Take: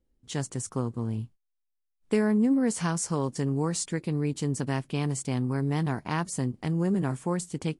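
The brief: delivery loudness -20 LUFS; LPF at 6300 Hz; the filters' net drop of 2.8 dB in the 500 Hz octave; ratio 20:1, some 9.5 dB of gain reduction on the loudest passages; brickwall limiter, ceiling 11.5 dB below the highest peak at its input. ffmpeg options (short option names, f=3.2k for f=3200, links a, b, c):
-af "lowpass=6.3k,equalizer=f=500:t=o:g=-3.5,acompressor=threshold=-30dB:ratio=20,volume=20.5dB,alimiter=limit=-11dB:level=0:latency=1"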